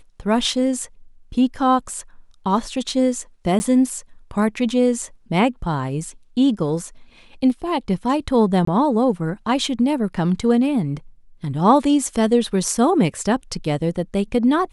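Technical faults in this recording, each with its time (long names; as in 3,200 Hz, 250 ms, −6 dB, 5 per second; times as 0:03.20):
0:03.59–0:03.60: drop-out 10 ms
0:08.65–0:08.67: drop-out 24 ms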